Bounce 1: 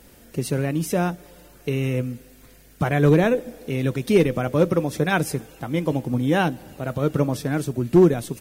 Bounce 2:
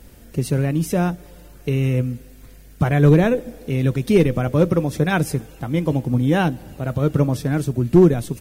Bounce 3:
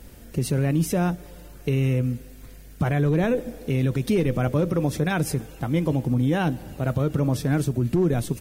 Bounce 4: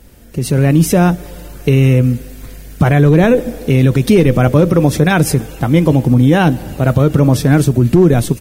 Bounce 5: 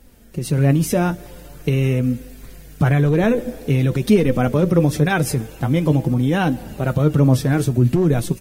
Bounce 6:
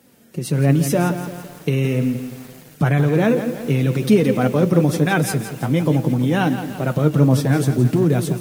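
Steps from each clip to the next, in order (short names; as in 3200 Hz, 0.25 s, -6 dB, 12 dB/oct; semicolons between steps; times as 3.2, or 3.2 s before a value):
low shelf 140 Hz +11 dB
limiter -13.5 dBFS, peak gain reduction 11.5 dB
AGC gain up to 11.5 dB; gain +2 dB
flange 0.46 Hz, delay 3.6 ms, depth 5.6 ms, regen +51%; gain -2.5 dB
HPF 120 Hz 24 dB/oct; lo-fi delay 0.169 s, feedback 55%, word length 6-bit, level -10 dB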